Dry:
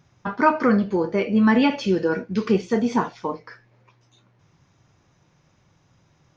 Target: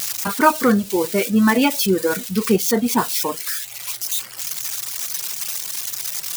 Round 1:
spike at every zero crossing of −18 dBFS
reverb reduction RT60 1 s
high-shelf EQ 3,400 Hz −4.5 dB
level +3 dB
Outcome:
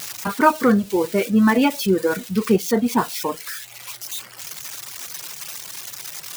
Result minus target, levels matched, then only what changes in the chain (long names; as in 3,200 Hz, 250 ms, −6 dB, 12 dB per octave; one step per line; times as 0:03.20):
8,000 Hz band −5.5 dB
change: high-shelf EQ 3,400 Hz +4 dB